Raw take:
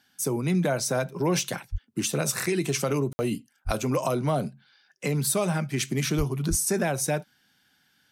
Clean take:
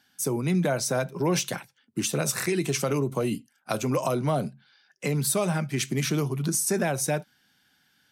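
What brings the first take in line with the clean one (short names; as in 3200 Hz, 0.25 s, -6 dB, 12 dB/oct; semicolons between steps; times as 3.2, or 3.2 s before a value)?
de-plosive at 1.71/3.65/6.17/6.49; room tone fill 3.13–3.19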